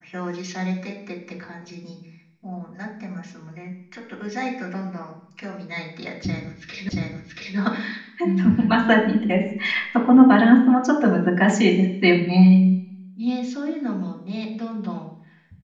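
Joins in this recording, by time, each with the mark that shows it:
0:06.89: the same again, the last 0.68 s

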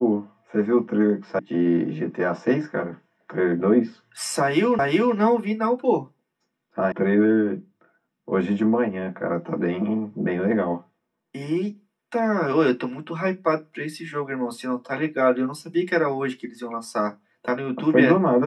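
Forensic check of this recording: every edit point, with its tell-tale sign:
0:01.39: cut off before it has died away
0:04.79: the same again, the last 0.37 s
0:06.92: cut off before it has died away

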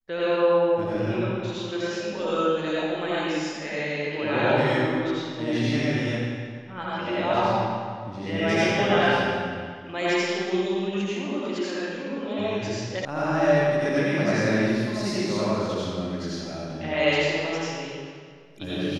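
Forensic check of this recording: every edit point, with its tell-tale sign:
0:13.05: cut off before it has died away

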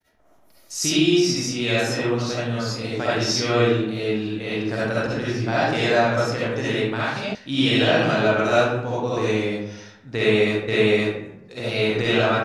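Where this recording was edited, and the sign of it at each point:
0:07.35: cut off before it has died away
0:10.68: the same again, the last 0.52 s

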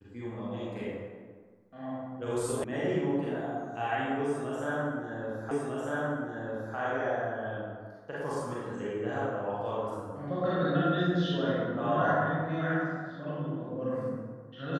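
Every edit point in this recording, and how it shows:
0:02.64: cut off before it has died away
0:05.51: the same again, the last 1.25 s

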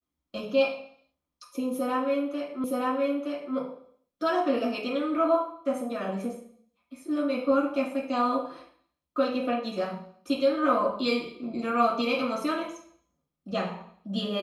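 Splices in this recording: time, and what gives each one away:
0:02.64: the same again, the last 0.92 s

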